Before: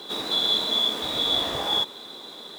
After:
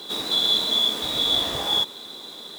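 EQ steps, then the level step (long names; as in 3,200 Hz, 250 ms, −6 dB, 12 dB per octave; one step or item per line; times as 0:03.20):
low-shelf EQ 260 Hz +5 dB
high-shelf EQ 3,300 Hz +8 dB
−2.0 dB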